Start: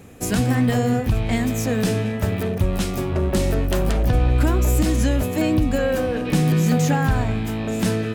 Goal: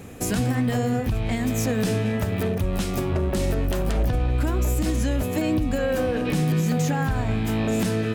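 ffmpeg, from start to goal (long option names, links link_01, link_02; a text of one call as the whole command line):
ffmpeg -i in.wav -af "alimiter=limit=-18dB:level=0:latency=1:release=334,volume=3.5dB" out.wav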